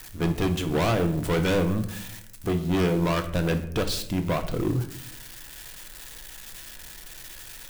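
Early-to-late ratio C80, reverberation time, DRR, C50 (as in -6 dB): 14.0 dB, 0.70 s, 6.0 dB, 11.0 dB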